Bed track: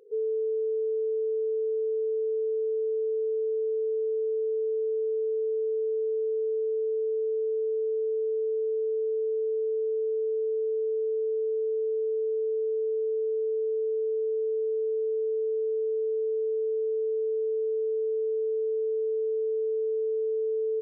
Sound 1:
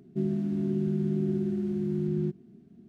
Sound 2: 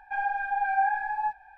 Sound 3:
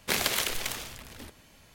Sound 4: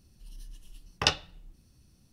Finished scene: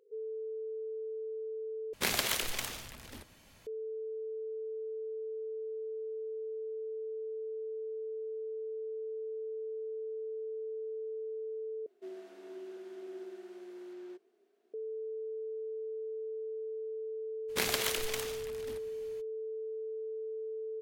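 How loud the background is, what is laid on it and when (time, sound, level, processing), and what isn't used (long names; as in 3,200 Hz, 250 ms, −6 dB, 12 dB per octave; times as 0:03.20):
bed track −11.5 dB
0:01.93: overwrite with 3 −3.5 dB
0:11.86: overwrite with 1 −2 dB + elliptic high-pass filter 430 Hz, stop band 70 dB
0:17.48: mix in 3 −4.5 dB, fades 0.02 s
not used: 2, 4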